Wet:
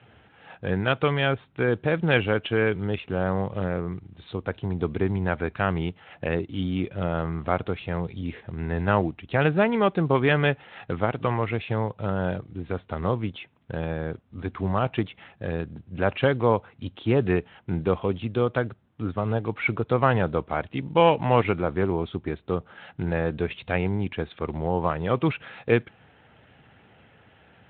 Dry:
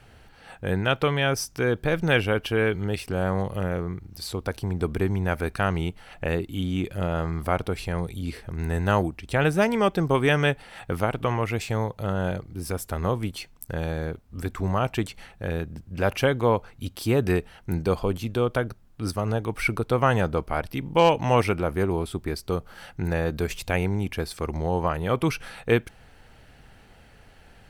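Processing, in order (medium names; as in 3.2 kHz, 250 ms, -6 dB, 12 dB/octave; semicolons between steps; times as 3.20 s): Speex 18 kbps 8 kHz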